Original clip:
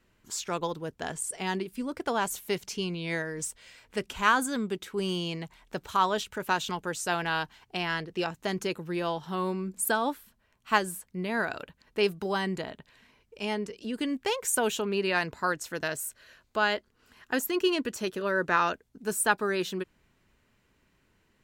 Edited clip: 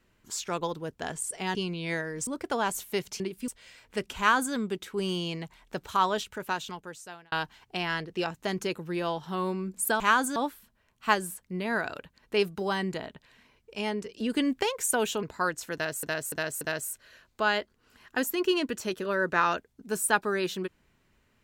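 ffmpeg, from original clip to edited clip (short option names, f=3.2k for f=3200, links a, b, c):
-filter_complex "[0:a]asplit=14[a][b][c][d][e][f][g][h][i][j][k][l][m][n];[a]atrim=end=1.552[o];[b]atrim=start=2.758:end=3.482[p];[c]atrim=start=1.828:end=2.762[q];[d]atrim=start=1.548:end=1.832[r];[e]atrim=start=3.478:end=7.32,asetpts=PTS-STARTPTS,afade=t=out:st=2.622:d=1.22[s];[f]atrim=start=7.32:end=10.002,asetpts=PTS-STARTPTS,afade=t=in:d=0.004:c=hsin[t];[g]atrim=start=4.178:end=4.542[u];[h]atrim=start=9.998:end=13.842[v];[i]atrim=start=13.838:end=14.272,asetpts=PTS-STARTPTS,volume=4dB[w];[j]atrim=start=14.268:end=14.872[x];[k]atrim=start=15.258:end=16.062[y];[l]atrim=start=15.768:end=16.062[z];[m]atrim=start=15.768:end=16.062[aa];[n]atrim=start=15.768[ab];[o][p]acrossfade=d=0.004:c1=hsin:c2=hsin[ac];[ac][q]acrossfade=d=0.004:c1=hsin:c2=hsin[ad];[ad][r]acrossfade=d=0.004:c1=hsin:c2=hsin[ae];[s][t]concat=n=2:v=0:a=1[af];[ae][af]acrossfade=d=0.004:c1=hsin:c2=hsin[ag];[ag][u]acrossfade=d=0.004:c1=hsin:c2=hsin[ah];[ah][v]acrossfade=d=0.004:c1=hsin:c2=hsin[ai];[ai][w]acrossfade=d=0.004:c1=hsin:c2=hsin[aj];[aj][x]acrossfade=d=0.004:c1=hsin:c2=hsin[ak];[ak][y]acrossfade=d=0.004:c1=hsin:c2=hsin[al];[al][z]acrossfade=d=0.004:c1=hsin:c2=hsin[am];[am][aa]acrossfade=d=0.004:c1=hsin:c2=hsin[an];[an][ab]acrossfade=d=0.004:c1=hsin:c2=hsin"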